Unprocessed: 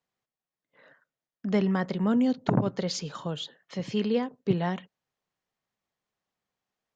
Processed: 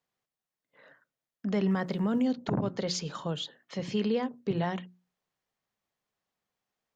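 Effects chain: hum notches 60/120/180/240/300/360 Hz; peak limiter -19.5 dBFS, peak gain reduction 8 dB; 1.67–2.22 s: crackle 260 per s -54 dBFS

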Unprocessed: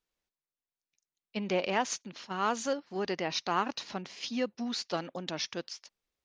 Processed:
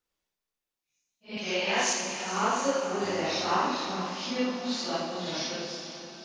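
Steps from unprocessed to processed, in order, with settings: phase randomisation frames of 200 ms; 1.37–1.93 s: tilt EQ +3 dB/octave; 3.02–3.52 s: mains buzz 100 Hz, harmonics 9, -47 dBFS 0 dB/octave; on a send: echo that smears into a reverb 479 ms, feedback 53%, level -11 dB; on the sum: Schroeder reverb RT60 1.7 s, combs from 28 ms, DRR 3.5 dB; trim +2 dB

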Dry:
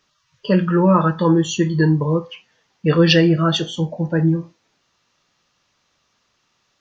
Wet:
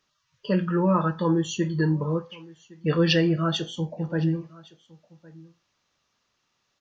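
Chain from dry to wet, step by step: delay 1112 ms -23 dB; trim -7.5 dB

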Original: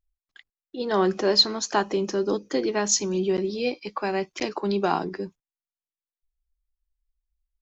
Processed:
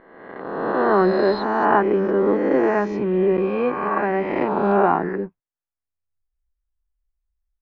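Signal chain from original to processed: reverse spectral sustain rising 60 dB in 1.66 s; waveshaping leveller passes 1; low-pass 1.9 kHz 24 dB/octave

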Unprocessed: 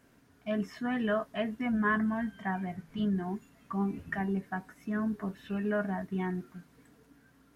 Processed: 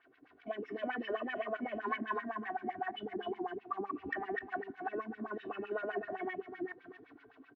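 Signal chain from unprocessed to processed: chunks repeated in reverse 224 ms, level 0 dB; delay 249 ms -15.5 dB; in parallel at +3 dB: peak limiter -26 dBFS, peak gain reduction 11.5 dB; on the sum: low-pass 4 kHz 24 dB/octave; on a send at -14 dB: reverberation, pre-delay 3 ms; on the sum: waveshaping leveller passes 1; compression 1.5:1, threshold -39 dBFS, peak gain reduction 8 dB; comb 2.7 ms, depth 91%; LFO band-pass sine 7.8 Hz 270–2700 Hz; trim -2.5 dB

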